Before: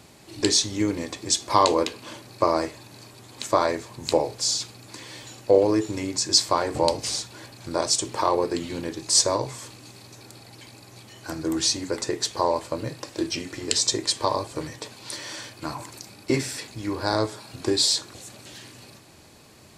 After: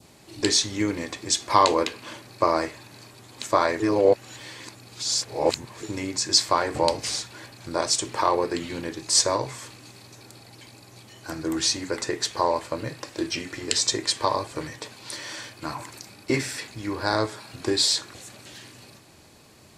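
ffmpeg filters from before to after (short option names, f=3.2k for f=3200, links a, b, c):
-filter_complex "[0:a]asplit=3[a][b][c];[a]atrim=end=3.802[d];[b]atrim=start=3.798:end=5.832,asetpts=PTS-STARTPTS,areverse[e];[c]atrim=start=5.828[f];[d][e]acrossfade=d=0.004:c1=hsin:c2=hsin[g];[g][f]acrossfade=d=0.004:c1=hsin:c2=hsin,adynamicequalizer=threshold=0.00891:dfrequency=1800:dqfactor=0.94:tfrequency=1800:tqfactor=0.94:attack=5:release=100:ratio=0.375:range=3:mode=boostabove:tftype=bell,volume=-1.5dB"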